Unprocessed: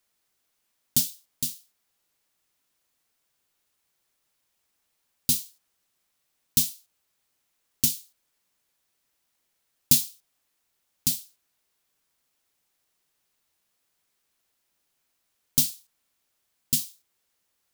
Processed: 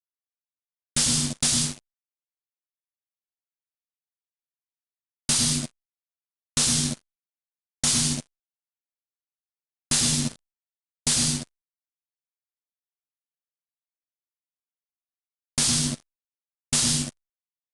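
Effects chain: plate-style reverb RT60 0.82 s, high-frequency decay 0.55×, pre-delay 90 ms, DRR 12 dB; compressor, threshold -33 dBFS, peak gain reduction 18.5 dB; fuzz box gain 48 dB, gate -56 dBFS; downsampling 22050 Hz; gain -2 dB; Opus 256 kbps 48000 Hz

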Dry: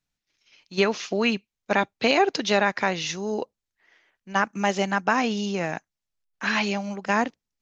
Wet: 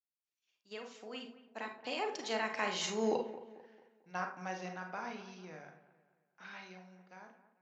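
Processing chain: ending faded out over 0.79 s; Doppler pass-by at 3.12, 29 m/s, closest 6.2 m; HPF 260 Hz 6 dB/oct; dark delay 0.222 s, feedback 40%, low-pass 2100 Hz, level -14.5 dB; on a send at -3 dB: reverb RT60 0.45 s, pre-delay 34 ms; on the sum: gain -3 dB

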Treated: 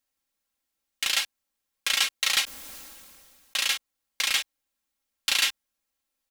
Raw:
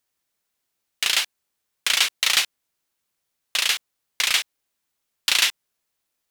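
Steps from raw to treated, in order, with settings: low shelf 100 Hz +6 dB; comb 3.7 ms, depth 69%; 2.44–3.68 sustainer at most 25 dB/s; gain -6 dB

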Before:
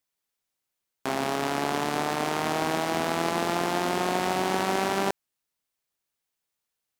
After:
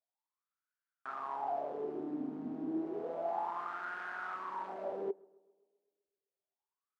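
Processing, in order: 4.34–4.84 bell 760 Hz -14 dB 0.36 oct; hard clip -26 dBFS, distortion -6 dB; wah 0.31 Hz 260–1500 Hz, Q 8.9; tape echo 0.129 s, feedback 65%, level -23.5 dB, low-pass 1300 Hz; gain +5 dB

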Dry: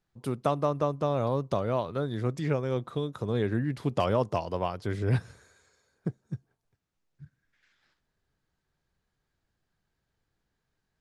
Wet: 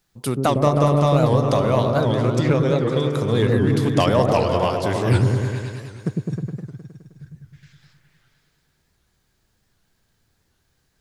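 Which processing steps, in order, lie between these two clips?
2.02–3.1 high shelf 8400 Hz -10.5 dB; in parallel at -7.5 dB: hard clip -20.5 dBFS, distortion -15 dB; on the sum: high shelf 2900 Hz +11.5 dB; repeats that get brighter 0.104 s, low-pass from 400 Hz, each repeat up 1 oct, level 0 dB; record warp 78 rpm, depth 160 cents; gain +4 dB

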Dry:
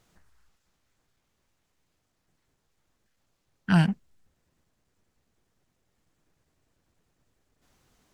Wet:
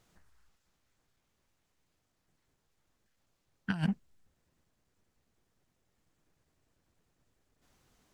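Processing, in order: negative-ratio compressor -23 dBFS, ratio -0.5; gain -6.5 dB

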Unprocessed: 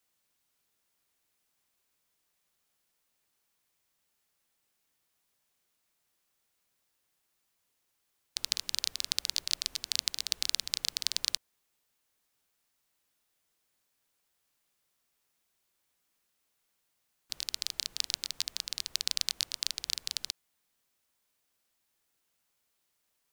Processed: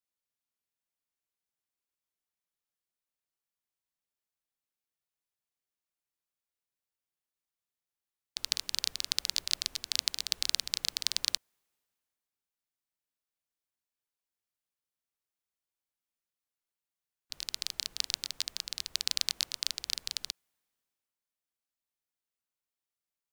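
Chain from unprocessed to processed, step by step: three-band expander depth 40%

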